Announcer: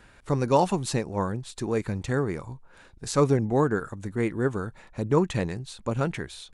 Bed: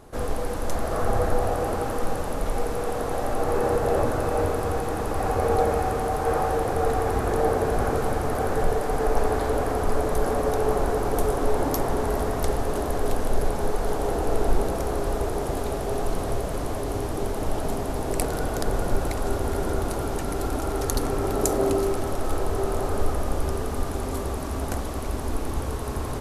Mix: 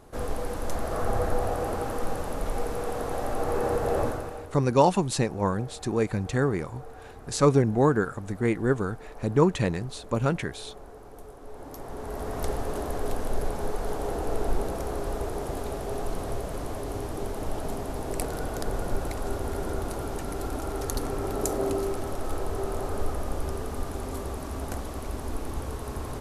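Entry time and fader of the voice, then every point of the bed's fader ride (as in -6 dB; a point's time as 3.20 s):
4.25 s, +1.5 dB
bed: 4.07 s -3.5 dB
4.56 s -22 dB
11.41 s -22 dB
12.42 s -5 dB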